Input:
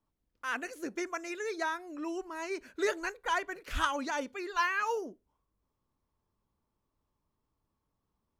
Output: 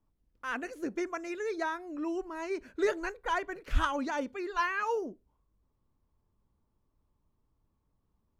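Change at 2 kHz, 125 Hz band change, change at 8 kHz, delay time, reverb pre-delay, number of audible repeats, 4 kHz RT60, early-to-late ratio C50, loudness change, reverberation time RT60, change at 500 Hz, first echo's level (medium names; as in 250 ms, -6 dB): -1.5 dB, no reading, -5.5 dB, no echo, no reverb, no echo, no reverb, no reverb, +0.5 dB, no reverb, +2.5 dB, no echo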